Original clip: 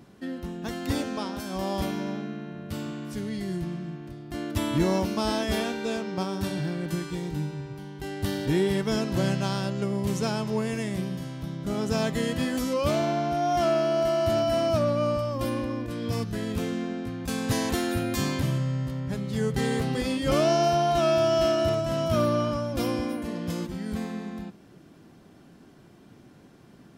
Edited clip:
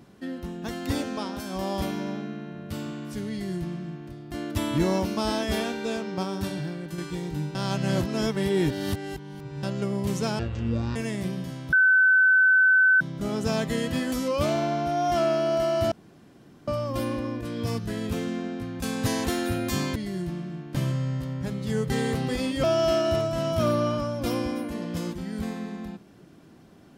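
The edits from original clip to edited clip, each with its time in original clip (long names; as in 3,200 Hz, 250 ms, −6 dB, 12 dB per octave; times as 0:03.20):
0:03.30–0:04.09: duplicate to 0:18.41
0:06.37–0:06.98: fade out, to −6.5 dB
0:07.55–0:09.63: reverse
0:10.39–0:10.69: play speed 53%
0:11.46: insert tone 1,520 Hz −15 dBFS 1.28 s
0:14.37–0:15.13: fill with room tone
0:20.30–0:21.17: remove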